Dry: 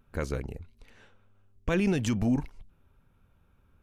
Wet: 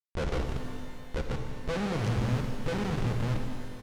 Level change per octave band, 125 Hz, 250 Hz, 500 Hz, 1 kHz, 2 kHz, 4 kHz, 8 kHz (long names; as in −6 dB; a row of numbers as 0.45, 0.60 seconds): +4.0, −3.5, +0.5, +6.0, +0.5, +3.5, −2.5 decibels